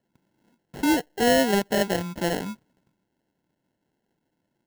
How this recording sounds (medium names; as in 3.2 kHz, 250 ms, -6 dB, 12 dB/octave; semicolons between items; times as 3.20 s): aliases and images of a low sample rate 1.2 kHz, jitter 0%